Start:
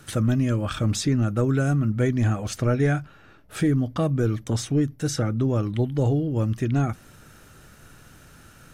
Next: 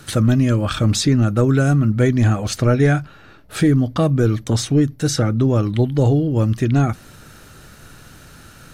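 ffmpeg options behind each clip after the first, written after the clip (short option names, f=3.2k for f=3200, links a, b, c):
-af "equalizer=f=4.2k:w=3.7:g=5,volume=6.5dB"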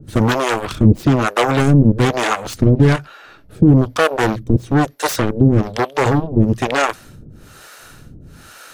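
-filter_complex "[0:a]aeval=exprs='0.531*(cos(1*acos(clip(val(0)/0.531,-1,1)))-cos(1*PI/2))+0.168*(cos(7*acos(clip(val(0)/0.531,-1,1)))-cos(7*PI/2))':c=same,acrossover=split=440[a][b];[a]aeval=exprs='val(0)*(1-1/2+1/2*cos(2*PI*1.1*n/s))':c=same[c];[b]aeval=exprs='val(0)*(1-1/2-1/2*cos(2*PI*1.1*n/s))':c=same[d];[c][d]amix=inputs=2:normalize=0,volume=5dB"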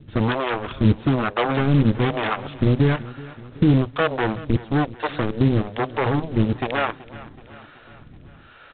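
-af "aresample=8000,acrusher=bits=5:mode=log:mix=0:aa=0.000001,aresample=44100,aecho=1:1:377|754|1131|1508|1885:0.119|0.0677|0.0386|0.022|0.0125,volume=-6dB"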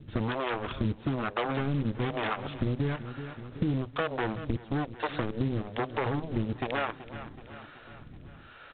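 -af "acompressor=threshold=-24dB:ratio=4,volume=-3dB"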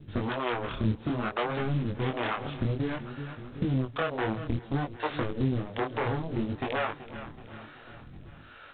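-af "flanger=delay=19.5:depth=7.9:speed=0.59,volume=3.5dB"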